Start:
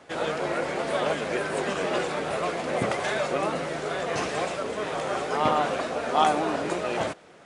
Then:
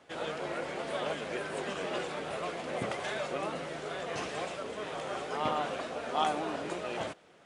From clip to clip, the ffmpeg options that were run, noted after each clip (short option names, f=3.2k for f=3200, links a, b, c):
-af "equalizer=f=3.1k:w=2.6:g=3.5,volume=-8.5dB"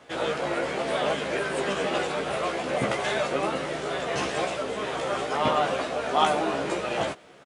-filter_complex "[0:a]asplit=2[a][b];[b]adelay=15,volume=-4dB[c];[a][c]amix=inputs=2:normalize=0,volume=7dB"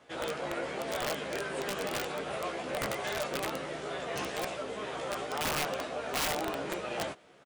-af "aeval=exprs='(mod(7.5*val(0)+1,2)-1)/7.5':c=same,volume=-7.5dB"